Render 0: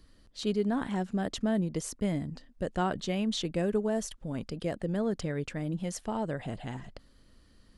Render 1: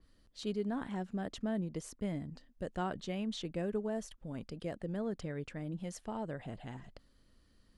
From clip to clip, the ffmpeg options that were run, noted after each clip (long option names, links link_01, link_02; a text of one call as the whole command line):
ffmpeg -i in.wav -af "adynamicequalizer=threshold=0.00224:dfrequency=3600:dqfactor=0.7:tfrequency=3600:tqfactor=0.7:attack=5:release=100:ratio=0.375:range=2.5:mode=cutabove:tftype=highshelf,volume=-7dB" out.wav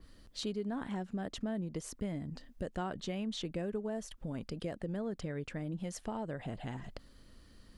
ffmpeg -i in.wav -af "acompressor=threshold=-48dB:ratio=2.5,volume=9dB" out.wav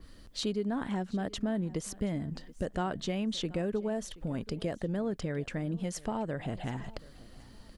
ffmpeg -i in.wav -af "aecho=1:1:728|1456:0.0891|0.0258,volume=5dB" out.wav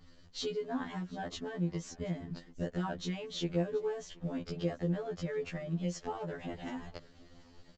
ffmpeg -i in.wav -af "aresample=16000,aeval=exprs='sgn(val(0))*max(abs(val(0))-0.00119,0)':channel_layout=same,aresample=44100,afftfilt=real='re*2*eq(mod(b,4),0)':imag='im*2*eq(mod(b,4),0)':win_size=2048:overlap=0.75" out.wav